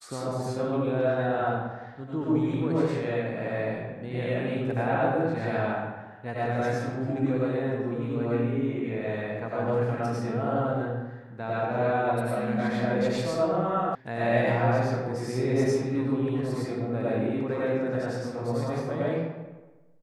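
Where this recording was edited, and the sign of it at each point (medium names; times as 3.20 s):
13.95 s: sound stops dead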